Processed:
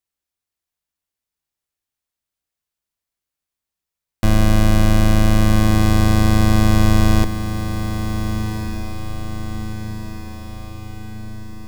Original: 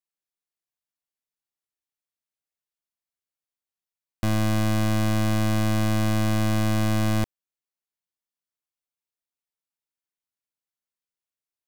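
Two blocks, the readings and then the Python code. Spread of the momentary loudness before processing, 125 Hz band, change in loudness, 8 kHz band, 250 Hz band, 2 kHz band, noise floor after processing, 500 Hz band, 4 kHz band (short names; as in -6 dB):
3 LU, +8.5 dB, +6.0 dB, +6.5 dB, +7.5 dB, +6.5 dB, under -85 dBFS, +6.5 dB, +7.0 dB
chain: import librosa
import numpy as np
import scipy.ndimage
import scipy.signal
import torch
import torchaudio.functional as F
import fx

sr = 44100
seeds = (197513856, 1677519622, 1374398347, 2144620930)

y = fx.octave_divider(x, sr, octaves=2, level_db=4.0)
y = fx.echo_diffused(y, sr, ms=1429, feedback_pct=55, wet_db=-9.0)
y = y * librosa.db_to_amplitude(6.0)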